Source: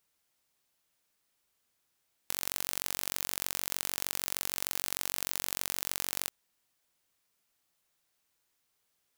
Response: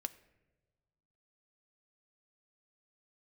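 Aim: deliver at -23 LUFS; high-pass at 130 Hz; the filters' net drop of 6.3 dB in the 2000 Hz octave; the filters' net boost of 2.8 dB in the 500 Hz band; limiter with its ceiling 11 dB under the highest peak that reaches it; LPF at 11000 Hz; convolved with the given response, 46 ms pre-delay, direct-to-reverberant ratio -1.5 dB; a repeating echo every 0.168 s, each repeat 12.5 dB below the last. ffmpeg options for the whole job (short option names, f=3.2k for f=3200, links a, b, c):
-filter_complex "[0:a]highpass=130,lowpass=11k,equalizer=f=500:t=o:g=4,equalizer=f=2k:t=o:g=-8.5,alimiter=limit=-21dB:level=0:latency=1,aecho=1:1:168|336|504:0.237|0.0569|0.0137,asplit=2[a][b];[1:a]atrim=start_sample=2205,adelay=46[c];[b][c]afir=irnorm=-1:irlink=0,volume=3.5dB[d];[a][d]amix=inputs=2:normalize=0,volume=19dB"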